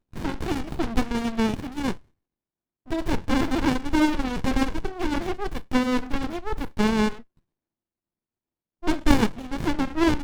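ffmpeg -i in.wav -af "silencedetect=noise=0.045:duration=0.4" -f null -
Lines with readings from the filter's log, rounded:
silence_start: 1.94
silence_end: 2.91 | silence_duration: 0.97
silence_start: 7.15
silence_end: 8.86 | silence_duration: 1.71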